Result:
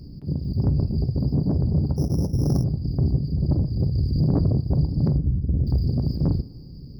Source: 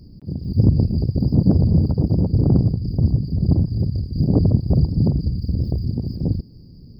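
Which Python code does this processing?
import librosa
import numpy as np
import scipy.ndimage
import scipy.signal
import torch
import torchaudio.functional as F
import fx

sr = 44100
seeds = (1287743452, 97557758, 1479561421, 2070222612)

y = fx.rider(x, sr, range_db=5, speed_s=0.5)
y = 10.0 ** (-11.5 / 20.0) * np.tanh(y / 10.0 ** (-11.5 / 20.0))
y = fx.moving_average(y, sr, points=39, at=(5.17, 5.67))
y = fx.rev_double_slope(y, sr, seeds[0], early_s=0.28, late_s=1.7, knee_db=-18, drr_db=11.0)
y = fx.resample_bad(y, sr, factor=8, down='filtered', up='hold', at=(1.96, 2.64))
y = fx.env_flatten(y, sr, amount_pct=50, at=(3.98, 4.61))
y = y * 10.0 ** (-2.5 / 20.0)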